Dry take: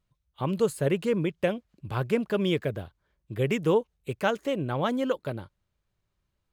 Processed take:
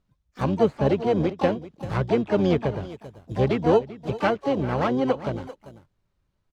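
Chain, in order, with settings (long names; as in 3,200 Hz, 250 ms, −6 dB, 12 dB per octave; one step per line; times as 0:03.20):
low-pass filter 6,500 Hz 12 dB per octave
slap from a distant wall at 67 metres, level −16 dB
in parallel at −5.5 dB: sample-rate reduction 3,500 Hz, jitter 0%
on the sum: treble cut that deepens with the level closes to 2,700 Hz, closed at −22 dBFS
pitch-shifted copies added −12 semitones −12 dB, +7 semitones −8 dB, +12 semitones −17 dB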